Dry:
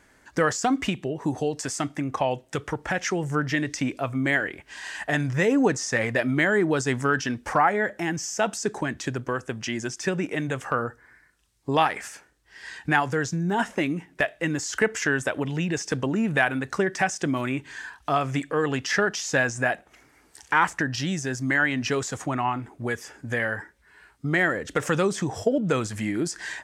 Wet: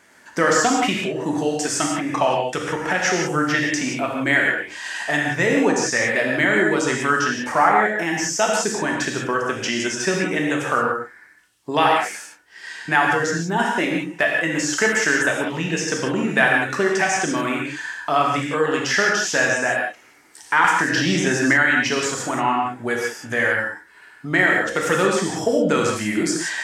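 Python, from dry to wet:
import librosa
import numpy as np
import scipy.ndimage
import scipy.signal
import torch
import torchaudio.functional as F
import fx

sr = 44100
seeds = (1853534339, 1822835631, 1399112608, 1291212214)

p1 = scipy.signal.sosfilt(scipy.signal.butter(2, 110.0, 'highpass', fs=sr, output='sos'), x)
p2 = fx.low_shelf(p1, sr, hz=390.0, db=-6.5)
p3 = fx.rider(p2, sr, range_db=4, speed_s=2.0)
p4 = p2 + (p3 * librosa.db_to_amplitude(2.0))
p5 = fx.rev_gated(p4, sr, seeds[0], gate_ms=200, shape='flat', drr_db=-1.5)
p6 = fx.band_squash(p5, sr, depth_pct=100, at=(20.64, 21.71))
y = p6 * librosa.db_to_amplitude(-3.5)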